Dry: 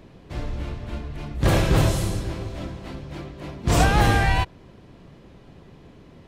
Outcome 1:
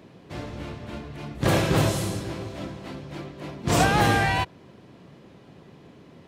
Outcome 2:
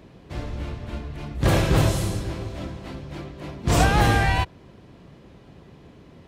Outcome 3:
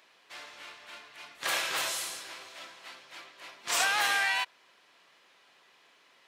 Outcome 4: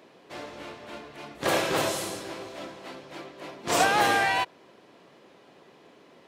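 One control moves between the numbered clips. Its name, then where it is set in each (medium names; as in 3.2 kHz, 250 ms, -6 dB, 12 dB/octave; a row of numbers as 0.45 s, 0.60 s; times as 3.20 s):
high-pass, cutoff frequency: 120 Hz, 41 Hz, 1.4 kHz, 410 Hz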